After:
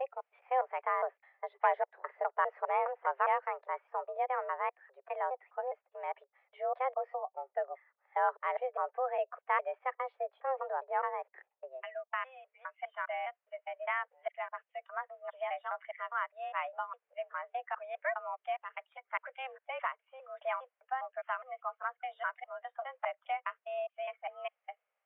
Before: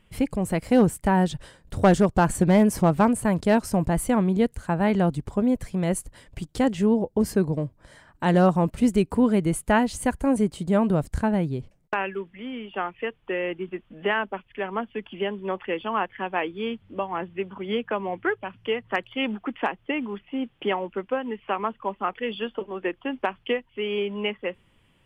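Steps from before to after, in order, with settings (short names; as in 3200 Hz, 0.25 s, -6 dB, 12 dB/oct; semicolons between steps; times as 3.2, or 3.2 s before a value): slices in reverse order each 0.204 s, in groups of 2; mistuned SSB +260 Hz 300–2200 Hz; spectral noise reduction 9 dB; gain -9 dB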